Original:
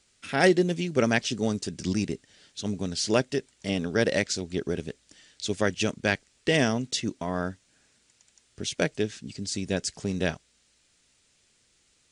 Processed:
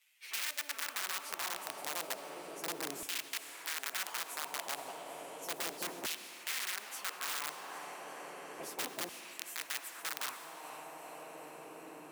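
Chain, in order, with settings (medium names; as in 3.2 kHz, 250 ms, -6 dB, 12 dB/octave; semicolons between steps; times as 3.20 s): frequency-domain pitch shifter +8.5 st; resonant high shelf 2.7 kHz -13 dB, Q 1.5; compression 8:1, threshold -30 dBFS, peak gain reduction 14 dB; echo that smears into a reverb 467 ms, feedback 75%, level -11 dB; integer overflow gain 28 dB; LFO high-pass saw down 0.33 Hz 310–2900 Hz; plate-style reverb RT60 1.8 s, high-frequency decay 1×, DRR 19.5 dB; spectrum-flattening compressor 2:1; trim +1 dB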